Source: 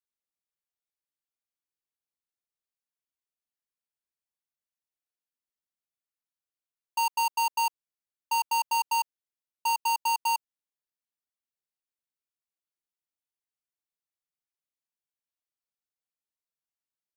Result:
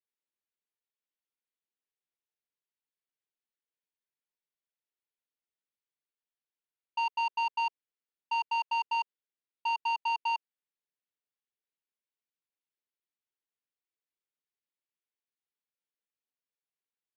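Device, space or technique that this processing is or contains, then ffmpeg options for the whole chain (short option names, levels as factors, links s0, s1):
kitchen radio: -af "highpass=200,equalizer=f=440:t=q:w=4:g=4,equalizer=f=680:t=q:w=4:g=-8,equalizer=f=1200:t=q:w=4:g=-5,lowpass=f=3900:w=0.5412,lowpass=f=3900:w=1.3066,volume=0.841"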